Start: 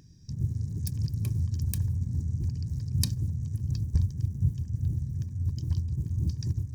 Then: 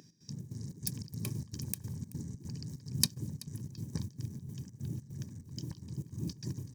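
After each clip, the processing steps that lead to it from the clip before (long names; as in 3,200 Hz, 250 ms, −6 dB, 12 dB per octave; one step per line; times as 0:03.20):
Bessel high-pass filter 230 Hz, order 4
gate pattern "x.xx.xx.xx.xx" 147 BPM −12 dB
single-tap delay 380 ms −20 dB
level +3.5 dB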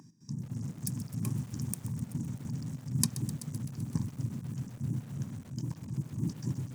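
octave-band graphic EQ 125/250/500/1,000/4,000/8,000 Hz +9/+11/−3/+12/−6/+9 dB
feedback echo at a low word length 128 ms, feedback 80%, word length 6 bits, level −14 dB
level −5.5 dB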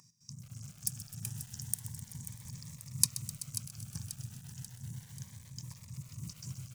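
guitar amp tone stack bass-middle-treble 10-0-10
on a send: repeating echo 537 ms, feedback 52%, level −12 dB
on the sum: phaser whose notches keep moving one way rising 0.33 Hz
level +4.5 dB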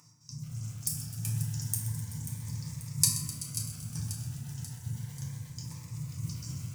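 feedback delay network reverb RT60 1.4 s, low-frequency decay 1×, high-frequency decay 0.35×, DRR −5 dB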